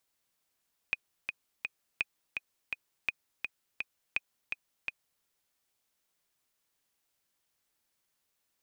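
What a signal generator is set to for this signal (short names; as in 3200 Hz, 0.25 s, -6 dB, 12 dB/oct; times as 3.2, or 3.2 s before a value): metronome 167 bpm, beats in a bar 3, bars 4, 2490 Hz, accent 5 dB -15.5 dBFS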